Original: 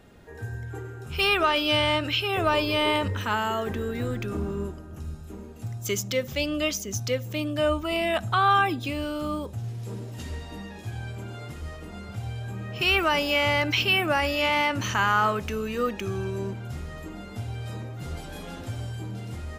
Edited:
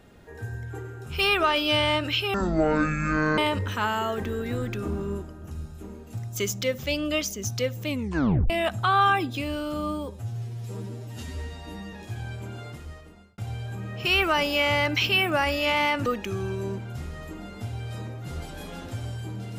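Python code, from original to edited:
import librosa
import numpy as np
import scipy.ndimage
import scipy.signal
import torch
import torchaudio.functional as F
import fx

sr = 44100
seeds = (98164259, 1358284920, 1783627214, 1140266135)

y = fx.edit(x, sr, fx.speed_span(start_s=2.34, length_s=0.53, speed=0.51),
    fx.tape_stop(start_s=7.37, length_s=0.62),
    fx.stretch_span(start_s=9.23, length_s=1.46, factor=1.5),
    fx.fade_out_span(start_s=11.36, length_s=0.78),
    fx.cut(start_s=14.82, length_s=0.99), tone=tone)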